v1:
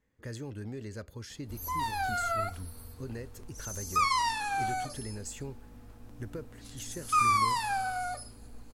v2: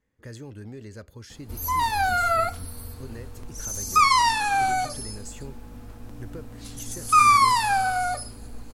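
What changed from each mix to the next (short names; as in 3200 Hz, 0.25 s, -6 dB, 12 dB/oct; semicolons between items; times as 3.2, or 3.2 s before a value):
background +9.0 dB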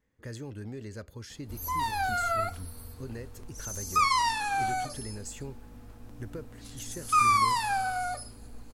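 background -6.5 dB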